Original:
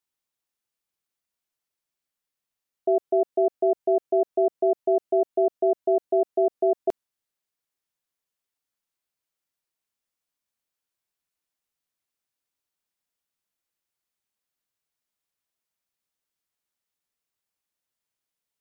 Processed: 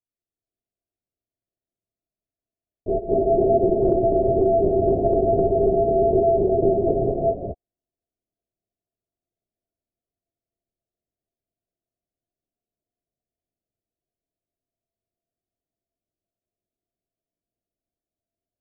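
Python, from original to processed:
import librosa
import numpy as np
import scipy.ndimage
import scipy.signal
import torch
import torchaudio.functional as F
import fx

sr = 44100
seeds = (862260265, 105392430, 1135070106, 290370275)

y = fx.wiener(x, sr, points=25)
y = scipy.signal.sosfilt(scipy.signal.butter(16, 750.0, 'lowpass', fs=sr, output='sos'), y)
y = fx.peak_eq(y, sr, hz=430.0, db=-4.5, octaves=0.41)
y = y + 10.0 ** (-3.0 / 20.0) * np.pad(y, (int(209 * sr / 1000.0), 0))[:len(y)]
y = fx.rider(y, sr, range_db=10, speed_s=0.5)
y = fx.lpc_vocoder(y, sr, seeds[0], excitation='whisper', order=8)
y = fx.rev_gated(y, sr, seeds[1], gate_ms=430, shape='rising', drr_db=-1.5)
y = fx.band_squash(y, sr, depth_pct=100, at=(3.82, 5.78))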